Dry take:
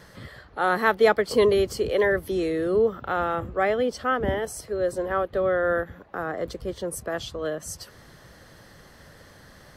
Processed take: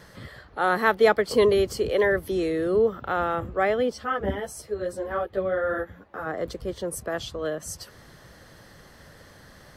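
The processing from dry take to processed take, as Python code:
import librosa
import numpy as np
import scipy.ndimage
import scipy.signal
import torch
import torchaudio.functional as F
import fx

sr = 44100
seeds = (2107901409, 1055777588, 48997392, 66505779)

y = fx.ensemble(x, sr, at=(3.92, 6.25), fade=0.02)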